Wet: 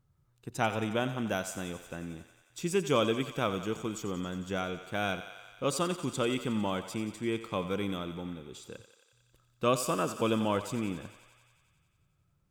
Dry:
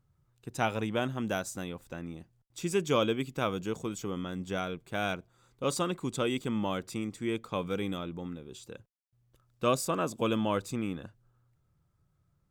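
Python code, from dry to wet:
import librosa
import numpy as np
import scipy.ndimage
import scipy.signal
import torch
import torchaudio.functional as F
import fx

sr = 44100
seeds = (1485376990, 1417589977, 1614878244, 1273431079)

y = fx.echo_thinned(x, sr, ms=90, feedback_pct=76, hz=470.0, wet_db=-11.5)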